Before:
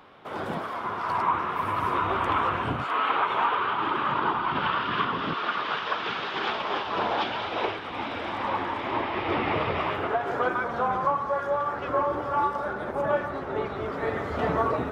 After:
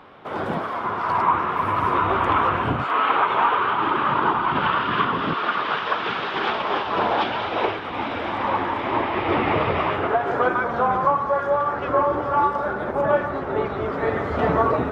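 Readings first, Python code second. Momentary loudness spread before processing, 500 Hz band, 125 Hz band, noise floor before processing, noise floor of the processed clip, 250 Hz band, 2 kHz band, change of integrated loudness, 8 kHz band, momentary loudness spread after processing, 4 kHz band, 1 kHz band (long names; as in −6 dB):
6 LU, +6.0 dB, +6.0 dB, −34 dBFS, −29 dBFS, +6.0 dB, +4.5 dB, +5.5 dB, can't be measured, 6 LU, +2.5 dB, +5.5 dB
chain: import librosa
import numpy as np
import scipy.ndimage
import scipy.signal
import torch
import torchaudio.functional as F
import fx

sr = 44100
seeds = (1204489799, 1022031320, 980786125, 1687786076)

y = fx.high_shelf(x, sr, hz=4300.0, db=-9.5)
y = y * librosa.db_to_amplitude(6.0)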